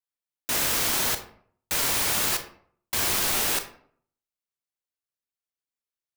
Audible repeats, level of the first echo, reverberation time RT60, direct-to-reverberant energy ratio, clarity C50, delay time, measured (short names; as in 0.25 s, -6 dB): none, none, 0.60 s, 8.0 dB, 10.5 dB, none